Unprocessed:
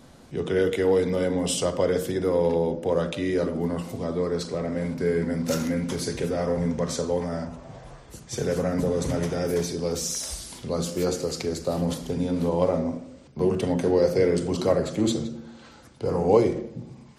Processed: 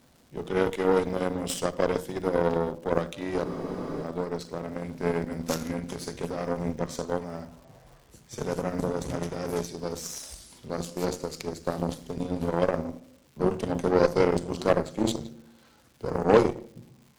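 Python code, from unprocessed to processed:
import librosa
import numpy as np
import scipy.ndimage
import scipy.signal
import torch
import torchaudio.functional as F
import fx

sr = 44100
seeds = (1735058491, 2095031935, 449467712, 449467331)

y = fx.cheby_harmonics(x, sr, harmonics=(4, 7), levels_db=(-17, -20), full_scale_db=-6.5)
y = fx.dmg_crackle(y, sr, seeds[0], per_s=330.0, level_db=-48.0)
y = fx.spec_freeze(y, sr, seeds[1], at_s=3.47, hold_s=0.56)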